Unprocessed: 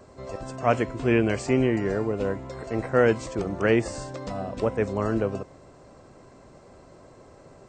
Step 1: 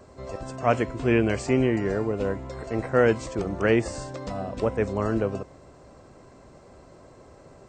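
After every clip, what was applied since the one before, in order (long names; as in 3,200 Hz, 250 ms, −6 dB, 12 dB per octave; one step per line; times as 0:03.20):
parametric band 64 Hz +5.5 dB 0.45 octaves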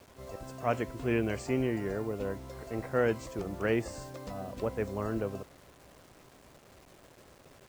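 bit-depth reduction 8 bits, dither none
level −8 dB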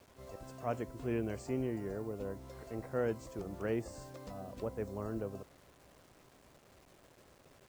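dynamic equaliser 2,400 Hz, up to −7 dB, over −50 dBFS, Q 0.71
level −5.5 dB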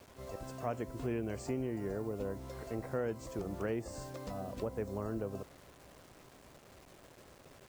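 downward compressor 3 to 1, threshold −38 dBFS, peak gain reduction 7 dB
level +4.5 dB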